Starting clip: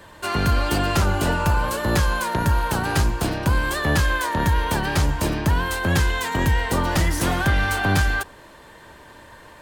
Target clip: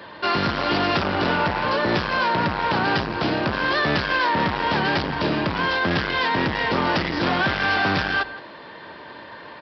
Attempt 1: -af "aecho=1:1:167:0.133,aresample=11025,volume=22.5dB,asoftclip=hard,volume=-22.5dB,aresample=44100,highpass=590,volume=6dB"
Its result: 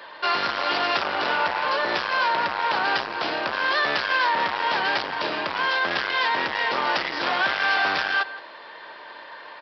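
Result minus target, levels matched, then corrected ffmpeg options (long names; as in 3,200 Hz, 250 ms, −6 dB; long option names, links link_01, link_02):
125 Hz band −18.0 dB
-af "aecho=1:1:167:0.133,aresample=11025,volume=22.5dB,asoftclip=hard,volume=-22.5dB,aresample=44100,highpass=170,volume=6dB"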